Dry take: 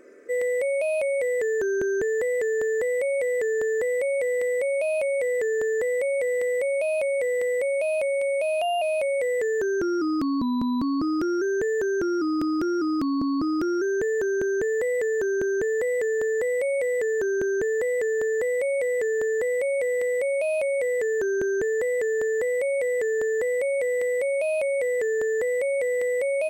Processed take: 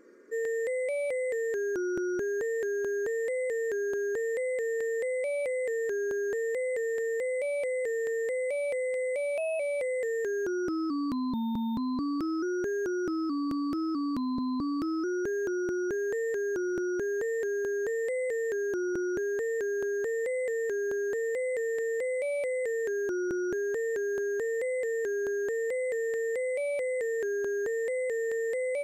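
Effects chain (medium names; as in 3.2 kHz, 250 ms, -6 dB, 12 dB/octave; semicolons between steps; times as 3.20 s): speed mistake 48 kHz file played as 44.1 kHz; trim -6 dB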